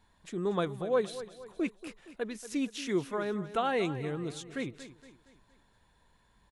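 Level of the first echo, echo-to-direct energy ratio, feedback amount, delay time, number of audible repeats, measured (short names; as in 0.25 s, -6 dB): -14.0 dB, -13.0 dB, 45%, 0.233 s, 4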